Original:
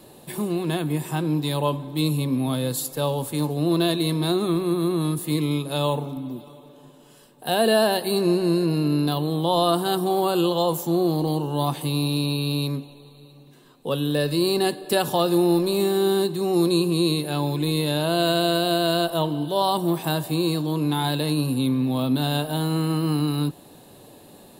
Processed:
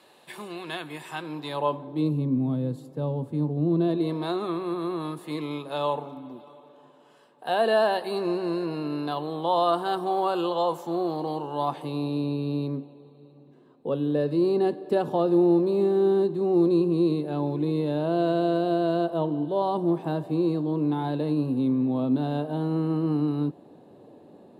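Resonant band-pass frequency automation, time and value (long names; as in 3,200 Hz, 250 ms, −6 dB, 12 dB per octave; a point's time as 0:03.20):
resonant band-pass, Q 0.74
0:01.18 1,900 Hz
0:01.79 690 Hz
0:02.31 190 Hz
0:03.76 190 Hz
0:04.30 980 Hz
0:11.55 980 Hz
0:12.34 360 Hz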